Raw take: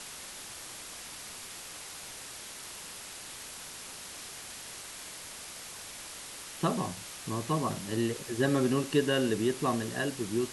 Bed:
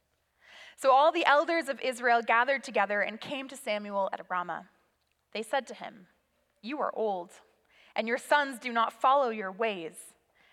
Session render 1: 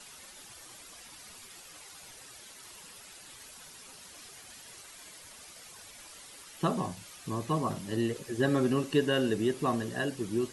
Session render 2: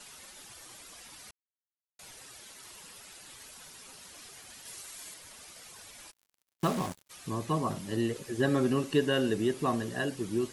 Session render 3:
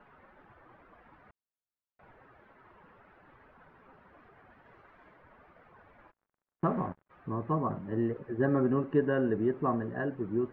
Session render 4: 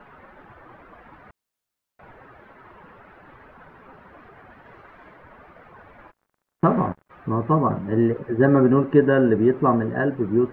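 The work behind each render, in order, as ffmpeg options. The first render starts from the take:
-af "afftdn=nr=10:nf=-45"
-filter_complex "[0:a]asettb=1/sr,asplit=3[a][b][c];[a]atrim=end=4.654[d];[b]atrim=start=4.65:end=5.14,asetpts=PTS-STARTPTS,afade=t=in:d=0.004:c=qsin,afade=t=out:st=0.486:d=0.004:c=qsin,highshelf=f=4.8k:g=7[e];[c]atrim=start=5.136[f];[d][e]acrossfade=d=0.004:c1=hsin:c2=qsin[g];[g][f]acrossfade=d=0.004:c1=qsin:c2=hsin,asplit=3[h][i][j];[h]afade=t=out:st=6.1:d=0.02[k];[i]acrusher=bits=5:mix=0:aa=0.5,afade=t=in:st=6.1:d=0.02,afade=t=out:st=7.09:d=0.02[l];[j]afade=t=in:st=7.09:d=0.02[m];[k][l][m]amix=inputs=3:normalize=0,asplit=3[n][o][p];[n]atrim=end=1.31,asetpts=PTS-STARTPTS,afade=t=out:st=1.306:d=0.004:c=hsin[q];[o]atrim=start=1.31:end=1.99,asetpts=PTS-STARTPTS,volume=0[r];[p]atrim=start=1.99,asetpts=PTS-STARTPTS,afade=t=in:d=0.004:c=hsin[s];[q][r][s]concat=n=3:v=0:a=1"
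-af "lowpass=f=1.6k:w=0.5412,lowpass=f=1.6k:w=1.3066"
-af "volume=11dB"

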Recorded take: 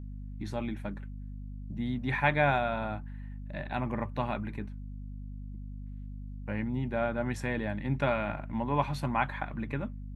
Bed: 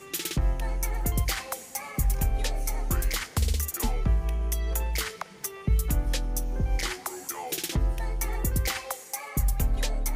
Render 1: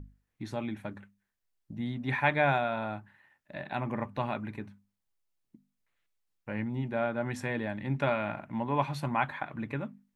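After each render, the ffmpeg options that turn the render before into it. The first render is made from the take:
-af "bandreject=f=50:t=h:w=6,bandreject=f=100:t=h:w=6,bandreject=f=150:t=h:w=6,bandreject=f=200:t=h:w=6,bandreject=f=250:t=h:w=6"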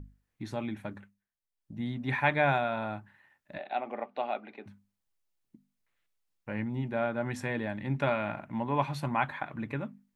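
-filter_complex "[0:a]asettb=1/sr,asplit=3[a][b][c];[a]atrim=end=3.584[d];[b]atrim=start=3.58:end=4.66,asetpts=PTS-STARTPTS,afade=t=in:d=0.004:c=qsin,afade=t=out:st=1.076:d=0.004:c=qsin,highpass=f=300:w=0.5412,highpass=f=300:w=1.3066,equalizer=f=320:t=q:w=4:g=-6,equalizer=f=730:t=q:w=4:g=8,equalizer=f=1k:t=q:w=4:g=-9,equalizer=f=1.7k:t=q:w=4:g=-7,lowpass=f=4.3k:w=0.5412,lowpass=f=4.3k:w=1.3066[e];[c]atrim=start=4.656[f];[d][e]acrossfade=d=0.004:c1=hsin:c2=qsin[g];[g][f]acrossfade=d=0.004:c1=qsin:c2=hsin,asplit=3[h][i][j];[h]atrim=end=1.26,asetpts=PTS-STARTPTS,afade=t=out:st=0.98:d=0.28:silence=0.316228[k];[i]atrim=start=1.26:end=1.53,asetpts=PTS-STARTPTS,volume=-10dB[l];[j]atrim=start=1.53,asetpts=PTS-STARTPTS,afade=t=in:d=0.28:silence=0.316228[m];[k][l][m]concat=n=3:v=0:a=1"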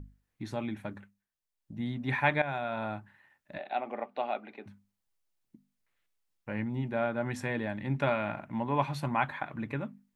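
-filter_complex "[0:a]asplit=2[a][b];[a]atrim=end=2.42,asetpts=PTS-STARTPTS,afade=t=out:st=2.416:d=0.004:c=hsin:silence=0.211349[c];[b]atrim=start=2.42,asetpts=PTS-STARTPTS,afade=t=in:d=0.43:silence=0.211349[d];[c][d]concat=n=2:v=0:a=1"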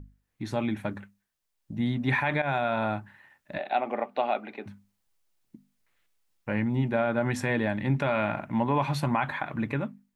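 -af "alimiter=limit=-22dB:level=0:latency=1:release=54,dynaudnorm=f=120:g=7:m=7dB"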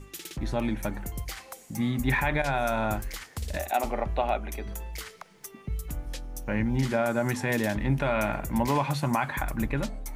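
-filter_complex "[1:a]volume=-9dB[a];[0:a][a]amix=inputs=2:normalize=0"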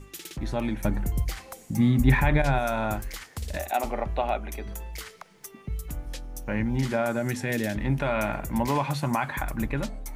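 -filter_complex "[0:a]asettb=1/sr,asplit=3[a][b][c];[a]atrim=end=0.844[d];[b]atrim=start=0.84:end=2.59,asetpts=PTS-STARTPTS,afade=t=in:d=0.004:c=qsin,afade=t=out:st=1.746:d=0.004:c=qsin,lowshelf=f=340:g=9.5[e];[c]atrim=start=2.586[f];[d][e]acrossfade=d=0.004:c1=hsin:c2=qsin[g];[g][f]acrossfade=d=0.004:c1=qsin:c2=hsin,asettb=1/sr,asplit=3[h][i][j];[h]atrim=end=7.174[k];[i]atrim=start=7.17:end=7.78,asetpts=PTS-STARTPTS,afade=t=in:d=0.004:c=qsin,afade=t=out:st=0.606:d=0.004:c=qsin,equalizer=f=990:w=2:g=-10.5[l];[j]atrim=start=7.776[m];[k][l]acrossfade=d=0.004:c1=hsin:c2=qsin[n];[n][m]acrossfade=d=0.004:c1=qsin:c2=hsin"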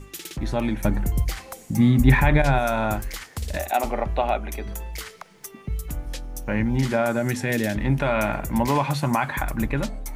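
-af "volume=4dB"

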